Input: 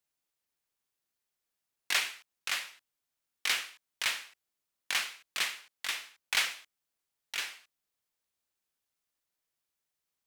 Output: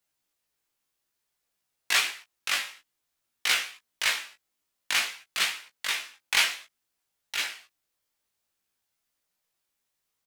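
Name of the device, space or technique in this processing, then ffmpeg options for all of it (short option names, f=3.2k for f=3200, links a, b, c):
double-tracked vocal: -filter_complex "[0:a]asplit=2[a][b];[b]adelay=17,volume=-8.5dB[c];[a][c]amix=inputs=2:normalize=0,flanger=delay=15.5:depth=5.3:speed=0.56,volume=8dB"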